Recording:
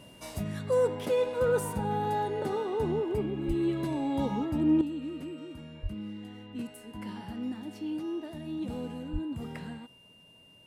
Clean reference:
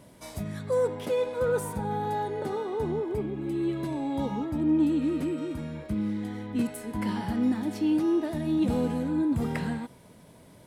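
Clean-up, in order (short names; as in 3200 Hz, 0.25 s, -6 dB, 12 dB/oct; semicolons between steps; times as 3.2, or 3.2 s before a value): notch 2800 Hz, Q 30; 3.47–3.59 HPF 140 Hz 24 dB/oct; 4.81 gain correction +10 dB; 5.82–5.94 HPF 140 Hz 24 dB/oct; 9.12–9.24 HPF 140 Hz 24 dB/oct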